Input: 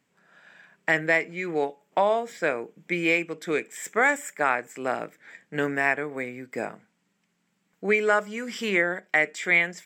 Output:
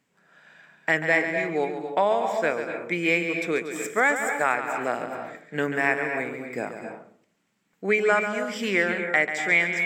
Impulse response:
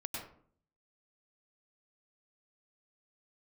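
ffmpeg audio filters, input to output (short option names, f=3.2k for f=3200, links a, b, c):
-filter_complex "[0:a]asplit=2[a][b];[1:a]atrim=start_sample=2205,adelay=139[c];[b][c]afir=irnorm=-1:irlink=0,volume=-5.5dB[d];[a][d]amix=inputs=2:normalize=0"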